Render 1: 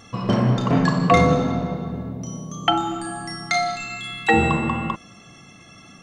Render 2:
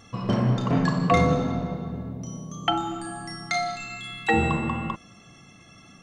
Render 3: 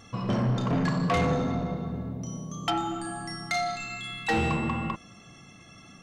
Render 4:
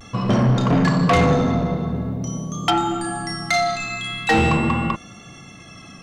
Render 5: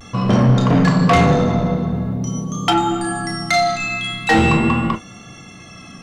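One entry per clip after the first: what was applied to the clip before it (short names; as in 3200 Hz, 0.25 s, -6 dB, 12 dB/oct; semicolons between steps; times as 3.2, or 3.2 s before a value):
low shelf 120 Hz +4 dB; gain -5 dB
soft clip -20.5 dBFS, distortion -11 dB
vibrato 0.45 Hz 27 cents; gain +9 dB
reverb, pre-delay 7 ms, DRR 7.5 dB; gain +2 dB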